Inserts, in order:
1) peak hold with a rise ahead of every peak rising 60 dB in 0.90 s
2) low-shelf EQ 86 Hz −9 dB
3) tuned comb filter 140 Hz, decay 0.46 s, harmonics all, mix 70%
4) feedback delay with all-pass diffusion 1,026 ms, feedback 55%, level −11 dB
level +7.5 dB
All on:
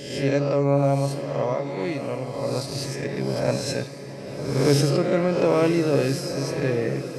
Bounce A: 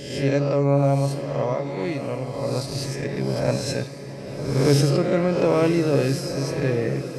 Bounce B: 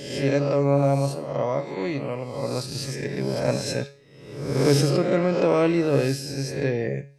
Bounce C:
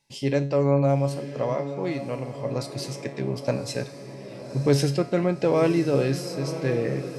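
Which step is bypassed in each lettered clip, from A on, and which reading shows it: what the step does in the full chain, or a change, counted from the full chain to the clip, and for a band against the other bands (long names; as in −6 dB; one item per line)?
2, 125 Hz band +2.5 dB
4, echo-to-direct ratio −9.5 dB to none audible
1, 8 kHz band −2.0 dB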